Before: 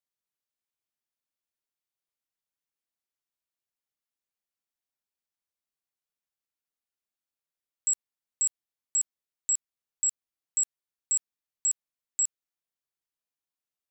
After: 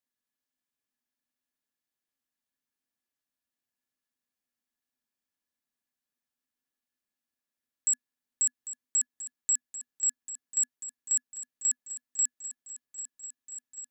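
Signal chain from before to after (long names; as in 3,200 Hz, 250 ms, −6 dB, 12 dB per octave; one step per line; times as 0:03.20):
hollow resonant body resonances 250/1,700 Hz, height 15 dB, ringing for 90 ms
on a send: feedback echo with a long and a short gap by turns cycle 1,331 ms, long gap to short 1.5 to 1, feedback 69%, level −13 dB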